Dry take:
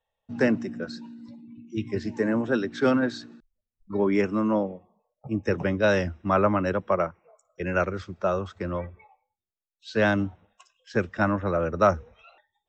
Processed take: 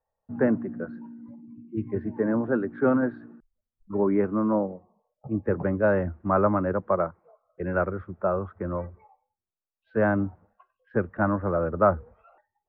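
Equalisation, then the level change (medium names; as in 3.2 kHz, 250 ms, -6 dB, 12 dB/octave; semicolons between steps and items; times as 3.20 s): low-pass 1.5 kHz 24 dB/octave; 0.0 dB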